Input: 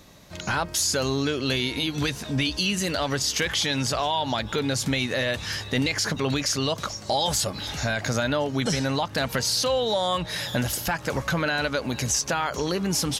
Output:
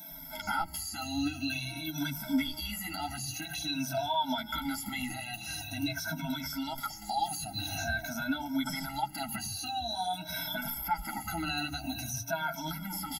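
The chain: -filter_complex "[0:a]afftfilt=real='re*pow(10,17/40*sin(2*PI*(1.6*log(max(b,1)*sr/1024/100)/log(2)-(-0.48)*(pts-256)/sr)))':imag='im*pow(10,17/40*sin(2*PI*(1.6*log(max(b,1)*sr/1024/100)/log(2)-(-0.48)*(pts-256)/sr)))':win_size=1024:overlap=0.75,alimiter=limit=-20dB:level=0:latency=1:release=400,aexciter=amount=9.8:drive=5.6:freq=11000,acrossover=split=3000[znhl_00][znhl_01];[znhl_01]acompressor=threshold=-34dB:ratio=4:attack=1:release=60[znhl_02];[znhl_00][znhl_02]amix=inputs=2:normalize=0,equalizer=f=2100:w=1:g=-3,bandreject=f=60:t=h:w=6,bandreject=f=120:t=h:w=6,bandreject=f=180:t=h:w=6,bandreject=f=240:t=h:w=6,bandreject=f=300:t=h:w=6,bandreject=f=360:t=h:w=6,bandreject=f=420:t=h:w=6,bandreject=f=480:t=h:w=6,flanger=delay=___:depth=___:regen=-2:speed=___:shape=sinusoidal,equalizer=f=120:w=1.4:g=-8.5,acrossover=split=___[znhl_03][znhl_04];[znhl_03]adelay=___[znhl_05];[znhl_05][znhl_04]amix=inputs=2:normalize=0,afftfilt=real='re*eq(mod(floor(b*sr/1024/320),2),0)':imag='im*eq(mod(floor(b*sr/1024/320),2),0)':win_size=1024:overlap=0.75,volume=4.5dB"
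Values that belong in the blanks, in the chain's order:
5.7, 7.2, 0.56, 160, 110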